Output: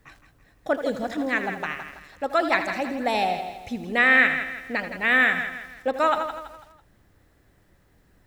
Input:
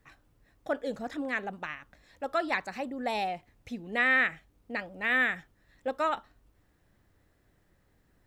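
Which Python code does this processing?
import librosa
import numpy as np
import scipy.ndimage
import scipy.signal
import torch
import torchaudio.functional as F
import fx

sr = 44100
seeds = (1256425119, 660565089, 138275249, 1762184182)

p1 = x + fx.echo_feedback(x, sr, ms=165, feedback_pct=40, wet_db=-10.0, dry=0)
p2 = fx.echo_crushed(p1, sr, ms=81, feedback_pct=35, bits=9, wet_db=-10.5)
y = p2 * 10.0 ** (7.0 / 20.0)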